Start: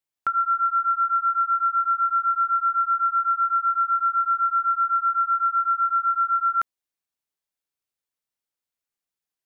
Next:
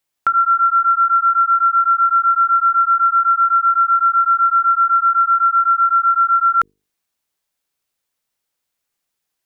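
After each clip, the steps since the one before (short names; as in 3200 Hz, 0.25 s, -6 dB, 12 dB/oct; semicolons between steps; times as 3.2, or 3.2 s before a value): notches 50/100/150/200/250/300/350/400/450 Hz; in parallel at +1 dB: level quantiser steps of 15 dB; on the sum: gain +5 dB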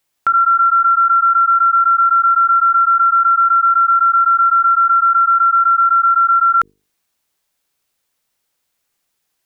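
maximiser +13.5 dB; gain -7 dB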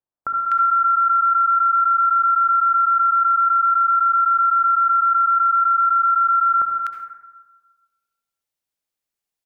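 level quantiser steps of 23 dB; bands offset in time lows, highs 0.25 s, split 1400 Hz; reverb RT60 1.3 s, pre-delay 57 ms, DRR 5 dB; gain +5.5 dB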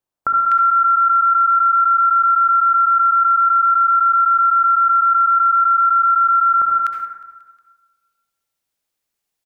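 limiter -16.5 dBFS, peak gain reduction 4.5 dB; feedback echo 0.18 s, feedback 59%, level -22 dB; gain +6.5 dB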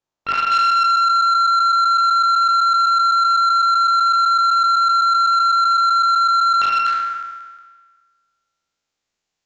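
spectral trails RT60 1.54 s; downsampling 16000 Hz; core saturation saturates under 2000 Hz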